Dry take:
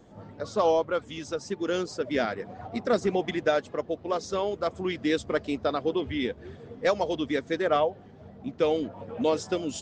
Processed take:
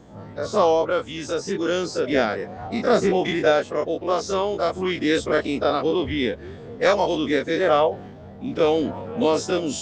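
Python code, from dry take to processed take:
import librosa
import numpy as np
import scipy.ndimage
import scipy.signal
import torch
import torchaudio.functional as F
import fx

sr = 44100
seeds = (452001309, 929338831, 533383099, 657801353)

y = fx.spec_dilate(x, sr, span_ms=60)
y = fx.transient(y, sr, attack_db=-1, sustain_db=5, at=(7.88, 9.19))
y = y * 10.0 ** (2.5 / 20.0)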